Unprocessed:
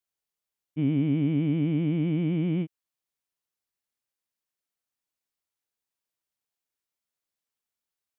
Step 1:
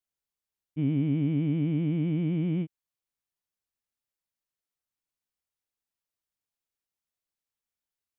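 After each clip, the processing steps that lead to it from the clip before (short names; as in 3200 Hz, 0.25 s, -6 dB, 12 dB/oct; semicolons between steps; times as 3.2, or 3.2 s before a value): low shelf 130 Hz +8 dB; gain -4 dB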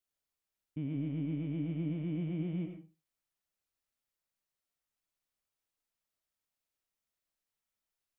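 limiter -30 dBFS, peak gain reduction 11.5 dB; reverb RT60 0.35 s, pre-delay 55 ms, DRR 4.5 dB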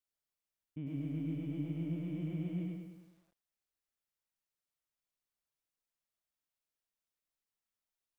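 lo-fi delay 0.102 s, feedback 55%, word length 11-bit, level -5 dB; gain -4.5 dB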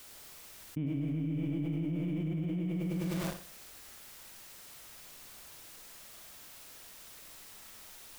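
on a send: flutter echo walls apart 10.9 m, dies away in 0.39 s; on the sum: fast leveller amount 100%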